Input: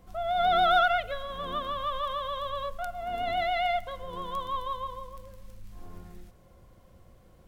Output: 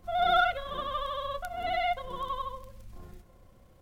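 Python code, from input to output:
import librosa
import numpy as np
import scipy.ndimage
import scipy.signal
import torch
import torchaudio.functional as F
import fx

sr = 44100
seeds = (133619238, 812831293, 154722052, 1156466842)

y = fx.stretch_grains(x, sr, factor=0.51, grain_ms=66.0)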